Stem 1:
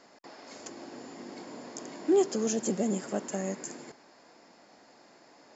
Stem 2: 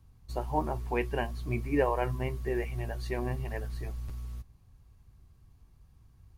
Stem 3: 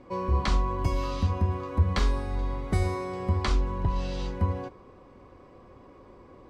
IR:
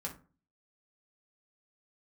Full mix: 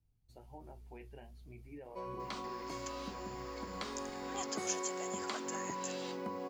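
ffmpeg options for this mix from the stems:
-filter_complex "[0:a]highpass=f=940:w=0.5412,highpass=f=940:w=1.3066,aexciter=amount=15.2:drive=5.5:freq=11000,adelay=2200,volume=0.841[s0];[1:a]equalizer=f=1100:t=o:w=0.27:g=-15,alimiter=limit=0.0668:level=0:latency=1:release=62,flanger=delay=6:depth=8.5:regen=-51:speed=0.45:shape=triangular,volume=0.2,asplit=2[s1][s2];[2:a]highpass=f=220:w=0.5412,highpass=f=220:w=1.3066,adelay=1850,volume=1.33[s3];[s2]apad=whole_len=368043[s4];[s3][s4]sidechaincompress=threshold=0.00112:ratio=8:attack=16:release=743[s5];[s1][s5]amix=inputs=2:normalize=0,equalizer=f=1700:t=o:w=0.33:g=-5,acompressor=threshold=0.0126:ratio=6,volume=1[s6];[s0][s6]amix=inputs=2:normalize=0"

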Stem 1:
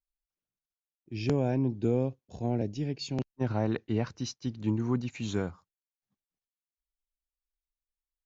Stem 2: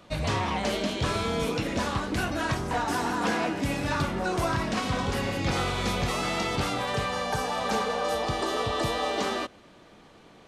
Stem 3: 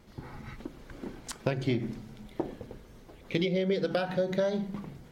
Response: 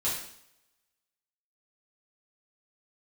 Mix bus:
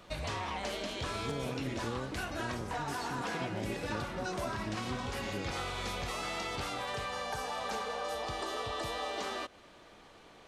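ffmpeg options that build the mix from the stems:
-filter_complex "[0:a]volume=0.668[s0];[1:a]equalizer=f=180:t=o:w=2:g=-7.5,volume=0.891[s1];[2:a]volume=0.473[s2];[s0][s1][s2]amix=inputs=3:normalize=0,acompressor=threshold=0.0141:ratio=2.5"

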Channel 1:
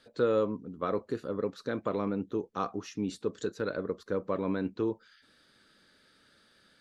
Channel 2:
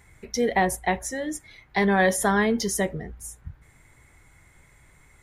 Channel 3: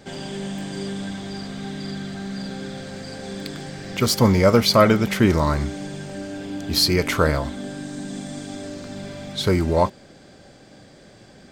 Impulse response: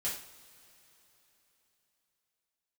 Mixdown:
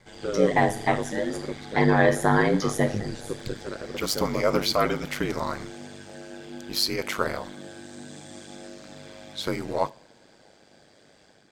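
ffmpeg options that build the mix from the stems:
-filter_complex "[0:a]adelay=50,volume=0.668[s0];[1:a]lowpass=f=2700:p=1,volume=0.75,asplit=2[s1][s2];[s2]volume=0.447[s3];[2:a]highpass=f=370:p=1,volume=0.398,asplit=2[s4][s5];[s5]volume=0.1[s6];[3:a]atrim=start_sample=2205[s7];[s3][s6]amix=inputs=2:normalize=0[s8];[s8][s7]afir=irnorm=-1:irlink=0[s9];[s0][s1][s4][s9]amix=inputs=4:normalize=0,dynaudnorm=f=110:g=5:m=1.68,aeval=exprs='val(0)*sin(2*PI*50*n/s)':c=same"

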